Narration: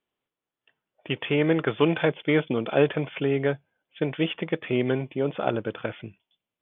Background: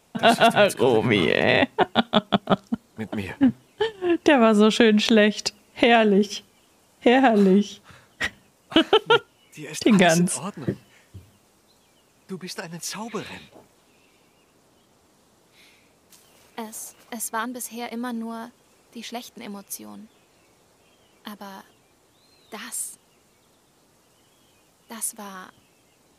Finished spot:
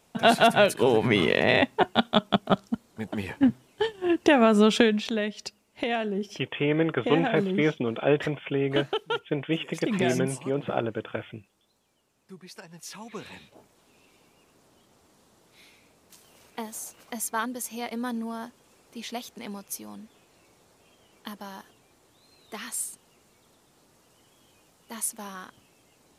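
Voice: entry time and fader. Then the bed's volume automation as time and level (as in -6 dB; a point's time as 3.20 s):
5.30 s, -2.0 dB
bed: 4.81 s -2.5 dB
5.04 s -11.5 dB
12.66 s -11.5 dB
14.02 s -1.5 dB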